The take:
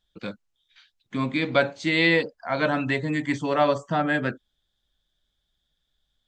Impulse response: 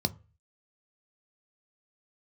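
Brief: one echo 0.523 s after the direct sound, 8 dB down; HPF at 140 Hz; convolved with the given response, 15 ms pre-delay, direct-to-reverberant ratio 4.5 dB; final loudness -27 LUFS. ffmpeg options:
-filter_complex "[0:a]highpass=140,aecho=1:1:523:0.398,asplit=2[a][b];[1:a]atrim=start_sample=2205,adelay=15[c];[b][c]afir=irnorm=-1:irlink=0,volume=-10dB[d];[a][d]amix=inputs=2:normalize=0,volume=-6dB"

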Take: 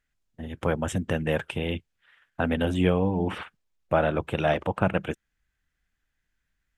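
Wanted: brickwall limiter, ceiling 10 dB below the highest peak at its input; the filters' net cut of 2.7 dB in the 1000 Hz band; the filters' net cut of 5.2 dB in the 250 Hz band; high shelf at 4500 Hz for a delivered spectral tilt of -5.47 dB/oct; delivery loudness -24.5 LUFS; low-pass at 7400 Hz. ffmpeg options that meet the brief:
-af "lowpass=7.4k,equalizer=f=250:t=o:g=-7.5,equalizer=f=1k:t=o:g=-3,highshelf=f=4.5k:g=-6.5,volume=8dB,alimiter=limit=-10.5dB:level=0:latency=1"

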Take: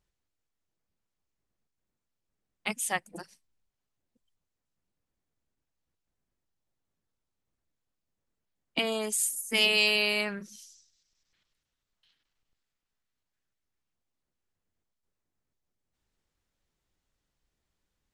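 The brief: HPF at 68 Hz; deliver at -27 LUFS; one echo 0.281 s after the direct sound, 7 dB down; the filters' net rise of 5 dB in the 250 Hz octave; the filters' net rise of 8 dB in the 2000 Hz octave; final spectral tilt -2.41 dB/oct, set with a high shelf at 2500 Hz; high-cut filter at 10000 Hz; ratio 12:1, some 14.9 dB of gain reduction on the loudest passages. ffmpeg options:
-af "highpass=68,lowpass=10k,equalizer=f=250:t=o:g=6,equalizer=f=2k:t=o:g=8,highshelf=f=2.5k:g=4.5,acompressor=threshold=-28dB:ratio=12,aecho=1:1:281:0.447,volume=5dB"

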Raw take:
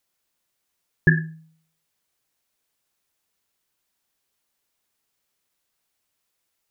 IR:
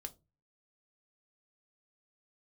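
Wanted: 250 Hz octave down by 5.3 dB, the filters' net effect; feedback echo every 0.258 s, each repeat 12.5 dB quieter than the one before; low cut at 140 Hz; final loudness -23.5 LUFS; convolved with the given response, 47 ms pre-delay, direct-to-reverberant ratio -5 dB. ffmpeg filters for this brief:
-filter_complex "[0:a]highpass=140,equalizer=f=250:t=o:g=-8.5,aecho=1:1:258|516|774:0.237|0.0569|0.0137,asplit=2[a][b];[1:a]atrim=start_sample=2205,adelay=47[c];[b][c]afir=irnorm=-1:irlink=0,volume=9dB[d];[a][d]amix=inputs=2:normalize=0,volume=-4.5dB"

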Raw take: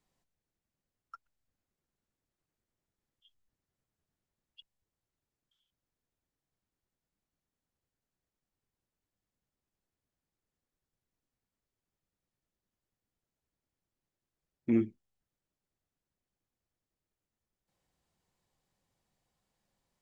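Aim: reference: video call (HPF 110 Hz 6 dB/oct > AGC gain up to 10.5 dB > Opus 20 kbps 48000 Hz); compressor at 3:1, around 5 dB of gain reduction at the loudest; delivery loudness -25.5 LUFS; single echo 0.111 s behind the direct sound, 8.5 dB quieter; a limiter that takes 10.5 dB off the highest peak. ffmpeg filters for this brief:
-af "acompressor=threshold=-29dB:ratio=3,alimiter=level_in=9dB:limit=-24dB:level=0:latency=1,volume=-9dB,highpass=f=110:p=1,aecho=1:1:111:0.376,dynaudnorm=m=10.5dB,volume=20dB" -ar 48000 -c:a libopus -b:a 20k

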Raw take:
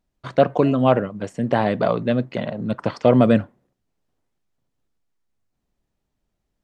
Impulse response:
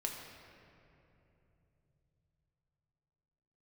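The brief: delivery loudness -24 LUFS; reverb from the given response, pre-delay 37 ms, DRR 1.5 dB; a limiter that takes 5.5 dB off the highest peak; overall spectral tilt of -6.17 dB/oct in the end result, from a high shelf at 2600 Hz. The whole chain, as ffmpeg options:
-filter_complex "[0:a]highshelf=f=2.6k:g=-8,alimiter=limit=-8.5dB:level=0:latency=1,asplit=2[a][b];[1:a]atrim=start_sample=2205,adelay=37[c];[b][c]afir=irnorm=-1:irlink=0,volume=-2.5dB[d];[a][d]amix=inputs=2:normalize=0,volume=-3.5dB"

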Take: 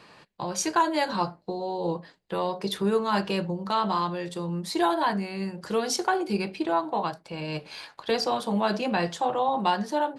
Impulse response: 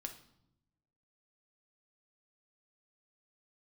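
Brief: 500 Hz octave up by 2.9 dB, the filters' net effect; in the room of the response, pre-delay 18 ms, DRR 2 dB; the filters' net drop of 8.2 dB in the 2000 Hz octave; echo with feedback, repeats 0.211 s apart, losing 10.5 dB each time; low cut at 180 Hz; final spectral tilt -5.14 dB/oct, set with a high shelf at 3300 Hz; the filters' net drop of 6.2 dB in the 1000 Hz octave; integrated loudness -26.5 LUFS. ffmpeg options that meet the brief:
-filter_complex "[0:a]highpass=180,equalizer=f=500:t=o:g=6.5,equalizer=f=1k:t=o:g=-9,equalizer=f=2k:t=o:g=-6.5,highshelf=f=3.3k:g=-5,aecho=1:1:211|422|633:0.299|0.0896|0.0269,asplit=2[a][b];[1:a]atrim=start_sample=2205,adelay=18[c];[b][c]afir=irnorm=-1:irlink=0,volume=1dB[d];[a][d]amix=inputs=2:normalize=0,volume=-1.5dB"

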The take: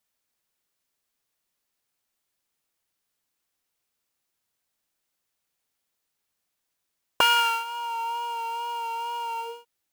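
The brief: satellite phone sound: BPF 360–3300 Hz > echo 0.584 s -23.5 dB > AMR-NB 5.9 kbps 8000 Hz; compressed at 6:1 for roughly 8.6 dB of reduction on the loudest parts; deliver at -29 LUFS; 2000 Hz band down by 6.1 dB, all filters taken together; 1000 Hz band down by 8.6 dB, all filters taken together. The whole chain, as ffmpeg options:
-af "equalizer=f=1k:t=o:g=-8.5,equalizer=f=2k:t=o:g=-5,acompressor=threshold=-30dB:ratio=6,highpass=360,lowpass=3.3k,aecho=1:1:584:0.0668,volume=11dB" -ar 8000 -c:a libopencore_amrnb -b:a 5900

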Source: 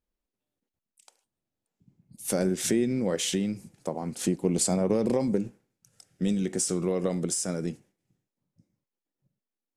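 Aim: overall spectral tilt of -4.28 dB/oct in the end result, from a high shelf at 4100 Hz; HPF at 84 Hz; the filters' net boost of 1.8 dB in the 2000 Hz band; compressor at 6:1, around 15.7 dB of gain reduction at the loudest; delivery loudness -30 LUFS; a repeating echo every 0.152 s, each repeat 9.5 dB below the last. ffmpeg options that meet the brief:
-af "highpass=84,equalizer=f=2k:t=o:g=3,highshelf=f=4.1k:g=-3.5,acompressor=threshold=-38dB:ratio=6,aecho=1:1:152|304|456|608:0.335|0.111|0.0365|0.012,volume=11dB"

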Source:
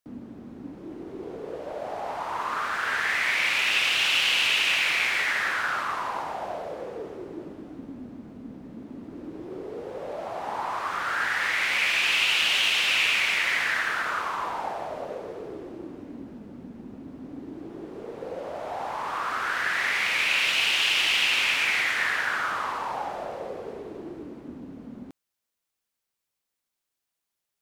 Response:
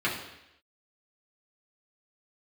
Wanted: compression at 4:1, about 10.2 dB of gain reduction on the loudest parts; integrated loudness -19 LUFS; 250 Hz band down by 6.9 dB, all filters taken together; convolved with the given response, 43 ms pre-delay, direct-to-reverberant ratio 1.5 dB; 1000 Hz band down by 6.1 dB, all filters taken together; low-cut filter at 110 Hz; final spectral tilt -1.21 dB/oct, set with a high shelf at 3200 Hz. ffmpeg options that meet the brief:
-filter_complex "[0:a]highpass=110,equalizer=f=250:t=o:g=-8.5,equalizer=f=1k:t=o:g=-8.5,highshelf=f=3.2k:g=5,acompressor=threshold=-31dB:ratio=4,asplit=2[a][b];[1:a]atrim=start_sample=2205,adelay=43[c];[b][c]afir=irnorm=-1:irlink=0,volume=-13dB[d];[a][d]amix=inputs=2:normalize=0,volume=11.5dB"

